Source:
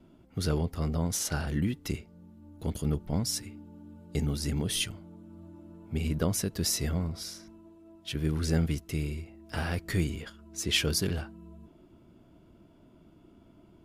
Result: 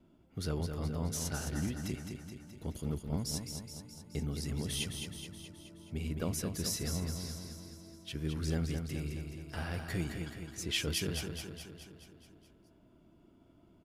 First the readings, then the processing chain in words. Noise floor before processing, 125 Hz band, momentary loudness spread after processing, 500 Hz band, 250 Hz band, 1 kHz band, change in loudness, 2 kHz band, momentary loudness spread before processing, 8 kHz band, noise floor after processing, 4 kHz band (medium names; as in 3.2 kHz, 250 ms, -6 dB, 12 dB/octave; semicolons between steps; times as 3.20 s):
-58 dBFS, -5.5 dB, 14 LU, -5.5 dB, -5.5 dB, -5.5 dB, -6.5 dB, -5.5 dB, 18 LU, -5.5 dB, -64 dBFS, -5.5 dB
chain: feedback delay 212 ms, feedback 58%, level -6 dB; trim -7 dB